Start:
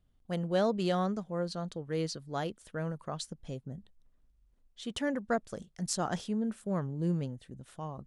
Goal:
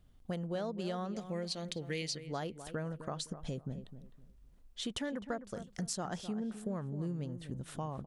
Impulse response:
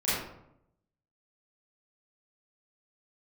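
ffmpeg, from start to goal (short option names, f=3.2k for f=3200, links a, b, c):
-filter_complex "[0:a]asettb=1/sr,asplit=3[a][b][c];[a]atrim=end=1.154[d];[b]atrim=start=1.15:end=2.2,asetpts=PTS-STARTPTS,afade=t=in:d=0.004:c=qsin,afade=t=out:st=1.046:d=0.004:c=qsin,highshelf=f=1.7k:t=q:w=3:g=8.5[e];[c]atrim=start=2.196[f];[d][e]acrossfade=d=0.004:c1=hsin:c2=qsin[g];[g][f]acrossfade=d=0.004:c1=qsin:c2=hsin,acompressor=threshold=-43dB:ratio=6,asplit=2[h][i];[i]adelay=257,lowpass=f=1.6k:p=1,volume=-11dB,asplit=2[j][k];[k]adelay=257,lowpass=f=1.6k:p=1,volume=0.27,asplit=2[l][m];[m]adelay=257,lowpass=f=1.6k:p=1,volume=0.27[n];[h][j][l][n]amix=inputs=4:normalize=0,volume=7dB"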